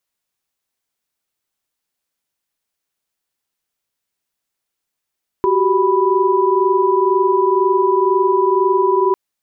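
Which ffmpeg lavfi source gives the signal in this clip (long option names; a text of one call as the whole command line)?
ffmpeg -f lavfi -i "aevalsrc='0.158*(sin(2*PI*369.99*t)+sin(2*PI*392*t)+sin(2*PI*987.77*t))':duration=3.7:sample_rate=44100" out.wav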